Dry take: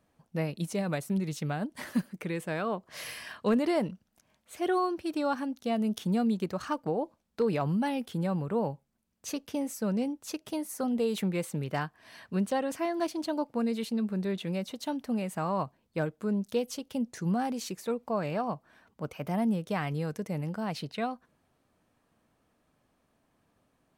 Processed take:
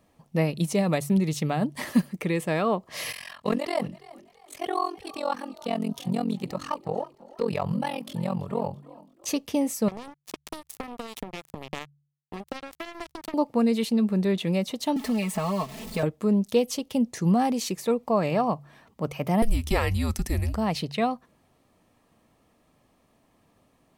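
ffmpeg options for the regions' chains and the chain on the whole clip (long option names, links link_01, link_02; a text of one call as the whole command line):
ffmpeg -i in.wav -filter_complex "[0:a]asettb=1/sr,asplit=3[link_01][link_02][link_03];[link_01]atrim=end=3.124[link_04];[link_02]atrim=start=3.12:end=9.27,asetpts=PTS-STARTPTS,afade=type=in:duration=0.004:curve=qsin,afade=type=out:start_time=6.146:duration=0.004:curve=qsin,equalizer=frequency=310:width=2.4:gain=-13.5,tremolo=f=44:d=0.974,asplit=4[link_05][link_06][link_07][link_08];[link_06]adelay=333,afreqshift=57,volume=-20dB[link_09];[link_07]adelay=666,afreqshift=114,volume=-28.2dB[link_10];[link_08]adelay=999,afreqshift=171,volume=-36.4dB[link_11];[link_05][link_09][link_10][link_11]amix=inputs=4:normalize=0,atrim=end_sample=271215[link_12];[link_03]atrim=start=9.266[link_13];[link_04][link_12]acrossfade=duration=0.004:curve1=hsin:curve2=qsin[link_14];[link_14][link_13]acrossfade=duration=0.004:curve1=qsin:curve2=hsin,asettb=1/sr,asplit=3[link_15][link_16][link_17];[link_15]atrim=end=9.884[link_18];[link_16]atrim=start=9.88:end=13.34,asetpts=PTS-STARTPTS,afade=type=in:duration=0.004:curve=qsin,afade=type=out:start_time=3.456:duration=0.004:curve=qsin,acompressor=threshold=-33dB:ratio=12:attack=3.2:release=140:knee=1:detection=peak,acrusher=bits=4:mix=0:aa=0.5[link_19];[link_17]atrim=start=13.336[link_20];[link_18][link_19]acrossfade=duration=0.004:curve1=hsin:curve2=qsin[link_21];[link_21][link_20]acrossfade=duration=0.004:curve1=qsin:curve2=hsin,asettb=1/sr,asplit=3[link_22][link_23][link_24];[link_22]atrim=end=14.964[link_25];[link_23]atrim=start=14.96:end=16.03,asetpts=PTS-STARTPTS,afade=type=in:duration=0.004:curve=qsin,afade=type=out:start_time=1.066:duration=0.004:curve=qsin,aeval=exprs='val(0)+0.5*0.0075*sgn(val(0))':channel_layout=same,acrossover=split=770|1600[link_26][link_27][link_28];[link_26]acompressor=threshold=-38dB:ratio=4[link_29];[link_27]acompressor=threshold=-48dB:ratio=4[link_30];[link_28]acompressor=threshold=-44dB:ratio=4[link_31];[link_29][link_30][link_31]amix=inputs=3:normalize=0,aecho=1:1:4.6:0.93,atrim=end_sample=47187[link_32];[link_24]atrim=start=16.026[link_33];[link_25][link_32]acrossfade=duration=0.004:curve1=hsin:curve2=qsin[link_34];[link_34][link_33]acrossfade=duration=0.004:curve1=qsin:curve2=hsin,asettb=1/sr,asplit=3[link_35][link_36][link_37];[link_35]atrim=end=19.424[link_38];[link_36]atrim=start=19.42:end=20.55,asetpts=PTS-STARTPTS,afade=type=in:duration=0.004:curve=qsin,afade=type=out:start_time=1.126:duration=0.004:curve=qsin,highshelf=frequency=3500:gain=9.5,afreqshift=-240[link_39];[link_37]atrim=start=20.546[link_40];[link_38][link_39]acrossfade=duration=0.004:curve1=hsin:curve2=qsin[link_41];[link_41][link_40]acrossfade=duration=0.004:curve1=qsin:curve2=hsin,bandreject=frequency=1500:width=5.5,bandreject=frequency=71.77:width_type=h:width=4,bandreject=frequency=143.54:width_type=h:width=4,volume=7.5dB" out.wav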